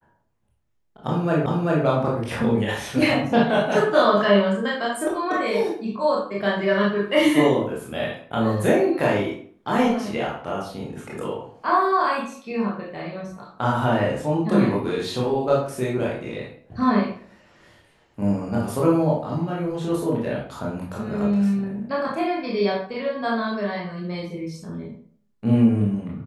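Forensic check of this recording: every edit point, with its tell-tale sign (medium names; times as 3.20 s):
1.46 s: repeat of the last 0.39 s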